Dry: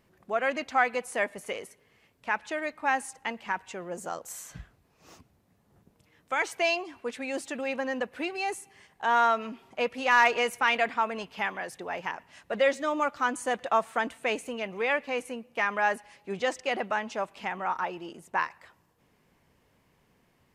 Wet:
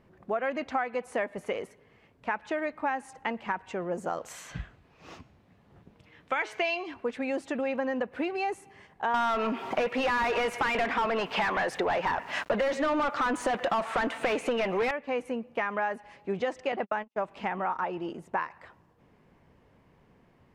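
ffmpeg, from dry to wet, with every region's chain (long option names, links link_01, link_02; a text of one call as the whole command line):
ffmpeg -i in.wav -filter_complex "[0:a]asettb=1/sr,asplit=3[link_01][link_02][link_03];[link_01]atrim=end=4.174[link_04];[link_02]atrim=start=4.17:end=6.94,asetpts=PTS-STARTPTS,afade=type=in:duration=0.004:curve=qsin,afade=type=out:start_time=2.766:duration=0.004:curve=qsin,equalizer=frequency=3000:width_type=o:width=2:gain=9,bandreject=frequency=213.7:width_type=h:width=4,bandreject=frequency=427.4:width_type=h:width=4,bandreject=frequency=641.1:width_type=h:width=4,bandreject=frequency=854.8:width_type=h:width=4,bandreject=frequency=1068.5:width_type=h:width=4,bandreject=frequency=1282.2:width_type=h:width=4,bandreject=frequency=1495.9:width_type=h:width=4,bandreject=frequency=1709.6:width_type=h:width=4,bandreject=frequency=1923.3:width_type=h:width=4,bandreject=frequency=2137:width_type=h:width=4,bandreject=frequency=2350.7:width_type=h:width=4,bandreject=frequency=2564.4:width_type=h:width=4,bandreject=frequency=2778.1:width_type=h:width=4,bandreject=frequency=2991.8:width_type=h:width=4,bandreject=frequency=3205.5:width_type=h:width=4,bandreject=frequency=3419.2:width_type=h:width=4,bandreject=frequency=3632.9:width_type=h:width=4,bandreject=frequency=3846.6:width_type=h:width=4,bandreject=frequency=4060.3:width_type=h:width=4,bandreject=frequency=4274:width_type=h:width=4,bandreject=frequency=4487.7:width_type=h:width=4,bandreject=frequency=4701.4:width_type=h:width=4,bandreject=frequency=4915.1:width_type=h:width=4,bandreject=frequency=5128.8:width_type=h:width=4,bandreject=frequency=5342.5:width_type=h:width=4,bandreject=frequency=5556.2:width_type=h:width=4,bandreject=frequency=5769.9:width_type=h:width=4,bandreject=frequency=5983.6:width_type=h:width=4,bandreject=frequency=6197.3:width_type=h:width=4,bandreject=frequency=6411:width_type=h:width=4,bandreject=frequency=6624.7:width_type=h:width=4,bandreject=frequency=6838.4:width_type=h:width=4,bandreject=frequency=7052.1:width_type=h:width=4,bandreject=frequency=7265.8:width_type=h:width=4,bandreject=frequency=7479.5:width_type=h:width=4,bandreject=frequency=7693.2:width_type=h:width=4,bandreject=frequency=7906.9:width_type=h:width=4[link_05];[link_03]atrim=start=6.936[link_06];[link_04][link_05]acrossfade=duration=0.004:curve1=hsin:curve2=qsin[link_07];[link_07][link_06]acrossfade=duration=0.004:curve1=qsin:curve2=hsin,asettb=1/sr,asplit=3[link_08][link_09][link_10];[link_08]atrim=end=9.144[link_11];[link_09]atrim=start=9.14:end=14.91,asetpts=PTS-STARTPTS,afade=type=in:duration=0.004:curve=qsin,afade=type=out:start_time=5.766:duration=0.004:curve=qsin,asplit=2[link_12][link_13];[link_13]highpass=frequency=720:poles=1,volume=29dB,asoftclip=type=tanh:threshold=-11dB[link_14];[link_12][link_14]amix=inputs=2:normalize=0,lowpass=frequency=5600:poles=1,volume=-6dB,aeval=exprs='val(0)*gte(abs(val(0)),0.00668)':channel_layout=same[link_15];[link_10]atrim=start=14.906[link_16];[link_11][link_15]acrossfade=duration=0.004:curve1=hsin:curve2=qsin[link_17];[link_17][link_16]acrossfade=duration=0.004:curve1=qsin:curve2=hsin,asettb=1/sr,asplit=3[link_18][link_19][link_20];[link_18]atrim=end=16.724[link_21];[link_19]atrim=start=16.72:end=17.23,asetpts=PTS-STARTPTS,afade=type=in:duration=0.004:curve=qsin,afade=type=out:start_time=0.506:duration=0.004:curve=qsin,agate=range=-58dB:threshold=-34dB:ratio=16:release=100:detection=peak,acompressor=mode=upward:threshold=-34dB:ratio=2.5:attack=3.2:release=140:knee=2.83:detection=peak[link_22];[link_20]atrim=start=17.226[link_23];[link_21][link_22]acrossfade=duration=0.004:curve1=hsin:curve2=qsin[link_24];[link_24][link_23]acrossfade=duration=0.004:curve1=qsin:curve2=hsin,lowpass=frequency=1300:poles=1,acompressor=threshold=-33dB:ratio=6,volume=6.5dB" out.wav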